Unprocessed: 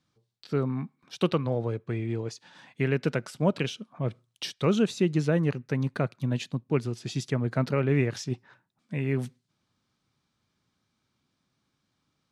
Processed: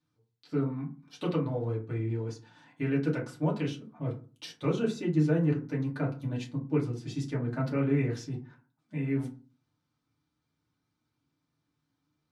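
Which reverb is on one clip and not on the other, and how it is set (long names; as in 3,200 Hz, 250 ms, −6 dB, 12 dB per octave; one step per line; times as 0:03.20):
feedback delay network reverb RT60 0.36 s, low-frequency decay 1.4×, high-frequency decay 0.45×, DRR −4.5 dB
level −11.5 dB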